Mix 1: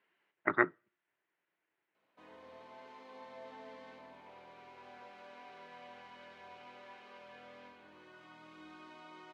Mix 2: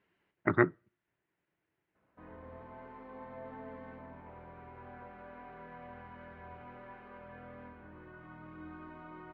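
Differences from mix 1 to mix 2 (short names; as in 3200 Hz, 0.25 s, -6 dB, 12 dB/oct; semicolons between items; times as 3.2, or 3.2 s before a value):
background: add synth low-pass 1600 Hz, resonance Q 1.7; master: remove weighting filter A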